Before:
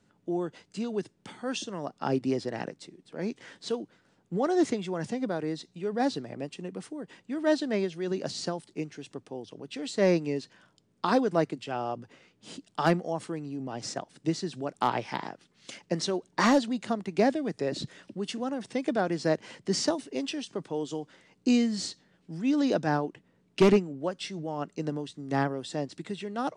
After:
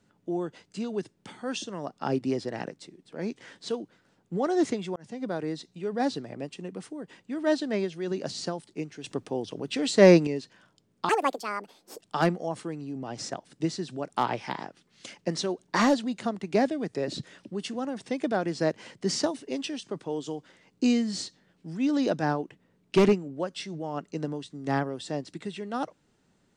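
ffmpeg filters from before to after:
-filter_complex "[0:a]asplit=6[a][b][c][d][e][f];[a]atrim=end=4.96,asetpts=PTS-STARTPTS,afade=t=out:st=4.956:d=0.004:c=hsin[g];[b]atrim=start=4.96:end=9.042,asetpts=PTS-STARTPTS,afade=t=in:d=0.37[h];[c]atrim=start=9.038:end=10.272,asetpts=PTS-STARTPTS,volume=8dB[i];[d]atrim=start=10.268:end=11.094[j];[e]atrim=start=11.09:end=12.65,asetpts=PTS-STARTPTS,asetrate=74970,aresample=44100,atrim=end_sample=40468,asetpts=PTS-STARTPTS[k];[f]atrim=start=12.646[l];[g][h]concat=n=2:v=0:a=1[m];[m][i]acrossfade=d=0.004:c1=hsin:c2=hsin[n];[n][j]acrossfade=d=0.004:c1=hsin:c2=hsin[o];[o][k]acrossfade=d=0.004:c1=hsin:c2=hsin[p];[p][l]acrossfade=d=0.004:c1=hsin:c2=hsin"

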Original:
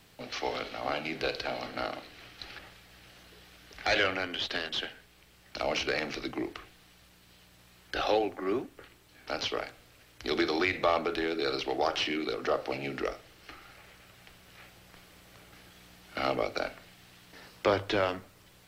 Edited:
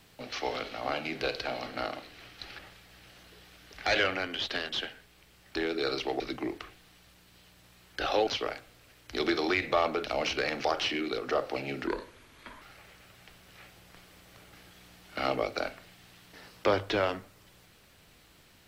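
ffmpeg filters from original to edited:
-filter_complex "[0:a]asplit=8[a][b][c][d][e][f][g][h];[a]atrim=end=5.562[i];[b]atrim=start=11.168:end=11.812[j];[c]atrim=start=6.148:end=8.222[k];[d]atrim=start=9.378:end=11.172[l];[e]atrim=start=5.558:end=6.152[m];[f]atrim=start=11.808:end=13.034[n];[g]atrim=start=13.03:end=13.61,asetpts=PTS-STARTPTS,asetrate=34398,aresample=44100,atrim=end_sample=32792,asetpts=PTS-STARTPTS[o];[h]atrim=start=13.606[p];[i][j]acrossfade=d=0.004:c1=hsin:c2=hsin[q];[q][k]acrossfade=d=0.004:c1=hsin:c2=hsin[r];[r][l]acrossfade=d=0.004:c1=hsin:c2=hsin[s];[s][m]acrossfade=d=0.004:c1=hsin:c2=hsin[t];[t][n]acrossfade=d=0.004:c1=hsin:c2=hsin[u];[u][o]acrossfade=d=0.004:c1=hsin:c2=hsin[v];[v][p]acrossfade=d=0.004:c1=hsin:c2=hsin"

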